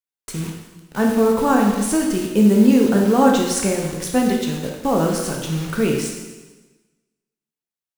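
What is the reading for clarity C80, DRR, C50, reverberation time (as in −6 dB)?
5.5 dB, −0.5 dB, 3.0 dB, 1.2 s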